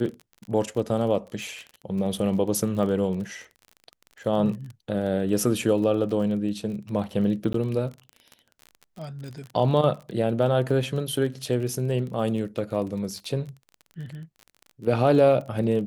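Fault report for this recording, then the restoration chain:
crackle 28 per s -33 dBFS
7.53–7.54 s: dropout 13 ms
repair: de-click; interpolate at 7.53 s, 13 ms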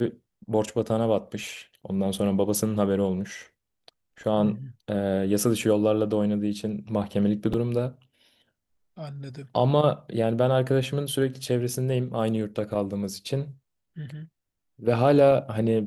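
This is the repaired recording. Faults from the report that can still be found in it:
nothing left

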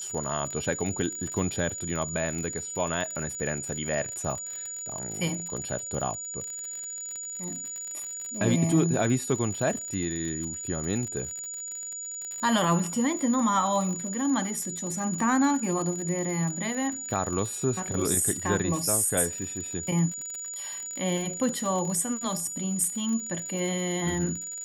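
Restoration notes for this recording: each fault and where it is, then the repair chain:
crackle 55 per s -32 dBFS
whine 6.9 kHz -34 dBFS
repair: de-click; band-stop 6.9 kHz, Q 30

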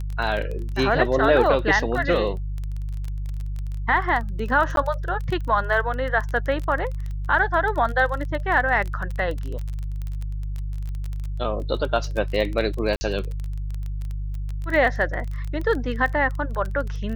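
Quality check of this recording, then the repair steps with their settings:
crackle 21 per s -27 dBFS
hum 50 Hz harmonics 3 -28 dBFS
4.76–4.77 s: dropout 12 ms
12.96–13.01 s: dropout 50 ms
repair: de-click; de-hum 50 Hz, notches 3; interpolate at 4.76 s, 12 ms; interpolate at 12.96 s, 50 ms

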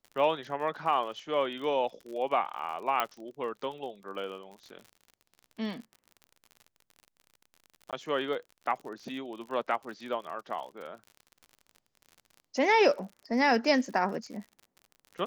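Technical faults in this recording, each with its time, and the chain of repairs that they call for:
crackle 48 per s -40 dBFS
3.00 s: pop -13 dBFS
7.91–7.93 s: dropout 17 ms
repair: de-click; interpolate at 7.91 s, 17 ms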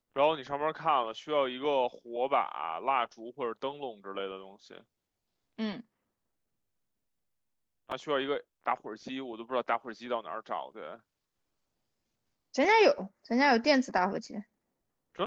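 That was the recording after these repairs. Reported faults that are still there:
nothing left

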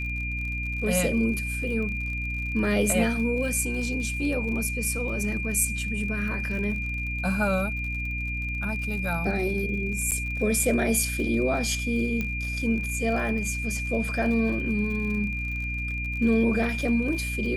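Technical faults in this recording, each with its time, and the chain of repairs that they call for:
crackle 48 per s -34 dBFS
hum 60 Hz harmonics 5 -32 dBFS
whine 2.4 kHz -31 dBFS
10.11–10.12 s: dropout 8.1 ms
12.21 s: pop -16 dBFS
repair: de-click; de-hum 60 Hz, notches 5; band-stop 2.4 kHz, Q 30; interpolate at 10.11 s, 8.1 ms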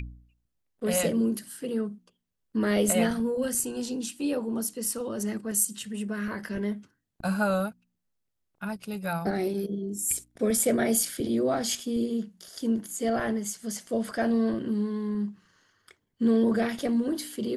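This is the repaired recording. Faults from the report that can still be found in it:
nothing left

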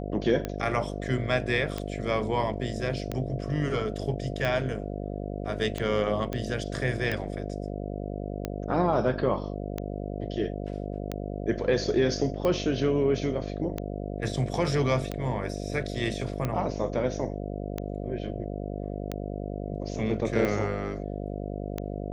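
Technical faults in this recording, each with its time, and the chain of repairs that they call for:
buzz 50 Hz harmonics 14 -34 dBFS
tick 45 rpm -16 dBFS
6.33 s: pop -19 dBFS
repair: de-click; de-hum 50 Hz, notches 14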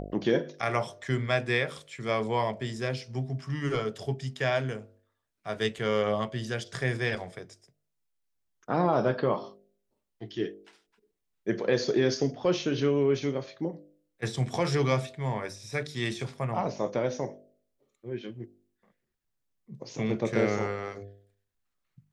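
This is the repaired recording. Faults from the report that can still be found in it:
nothing left

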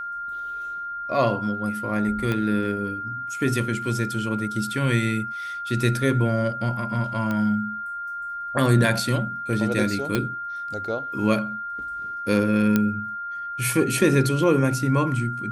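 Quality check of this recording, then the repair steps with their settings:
whine 1.4 kHz -29 dBFS
2.32 s: pop -13 dBFS
7.31 s: pop -15 dBFS
10.15 s: pop -9 dBFS
12.76 s: pop -7 dBFS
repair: de-click; band-stop 1.4 kHz, Q 30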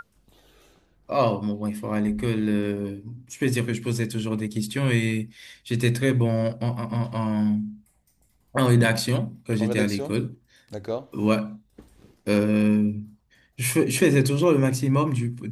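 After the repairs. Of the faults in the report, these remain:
2.32 s: pop
10.15 s: pop

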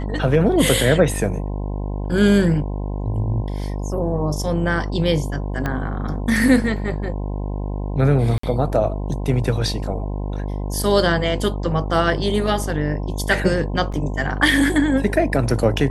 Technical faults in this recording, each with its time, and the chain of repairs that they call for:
buzz 50 Hz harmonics 21 -25 dBFS
5.66 s: pop -11 dBFS
8.38–8.43 s: dropout 54 ms
13.92 s: dropout 4.7 ms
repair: de-click; de-hum 50 Hz, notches 21; interpolate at 8.38 s, 54 ms; interpolate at 13.92 s, 4.7 ms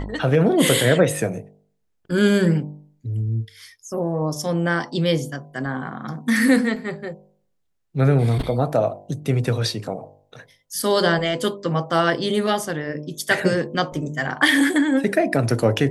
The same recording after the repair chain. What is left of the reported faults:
5.66 s: pop

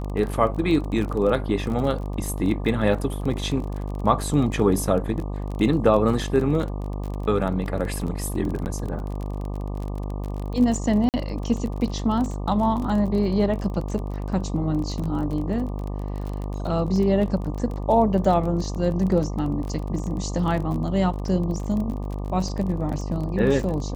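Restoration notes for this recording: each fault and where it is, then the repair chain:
buzz 50 Hz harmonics 24 -29 dBFS
crackle 26 per s -29 dBFS
8.65–8.66 s: dropout 9.4 ms
11.09–11.14 s: dropout 48 ms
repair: de-click; de-hum 50 Hz, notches 24; interpolate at 8.65 s, 9.4 ms; interpolate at 11.09 s, 48 ms

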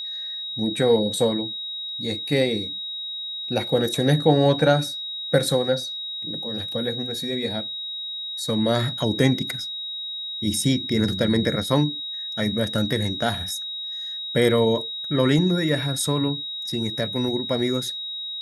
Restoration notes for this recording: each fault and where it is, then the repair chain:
whine 3.8 kHz -29 dBFS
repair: band-stop 3.8 kHz, Q 30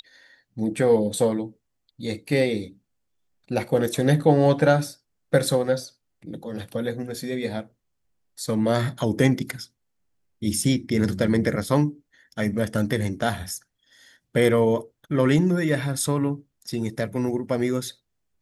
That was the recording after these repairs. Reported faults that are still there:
nothing left

